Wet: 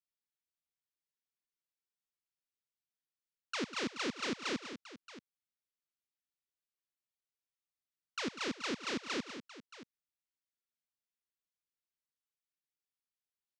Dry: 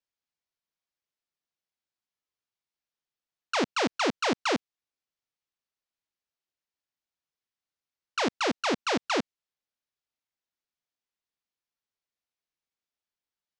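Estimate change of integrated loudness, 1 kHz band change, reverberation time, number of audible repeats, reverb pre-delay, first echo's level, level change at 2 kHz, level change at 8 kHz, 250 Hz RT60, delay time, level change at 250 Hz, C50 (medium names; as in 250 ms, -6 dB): -10.0 dB, -13.5 dB, no reverb, 3, no reverb, -17.0 dB, -8.5 dB, -7.5 dB, no reverb, 101 ms, -8.5 dB, no reverb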